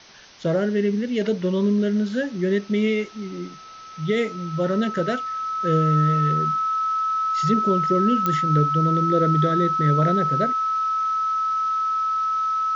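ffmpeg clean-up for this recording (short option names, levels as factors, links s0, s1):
-af "adeclick=t=4,bandreject=f=1300:w=30,afwtdn=0.0063"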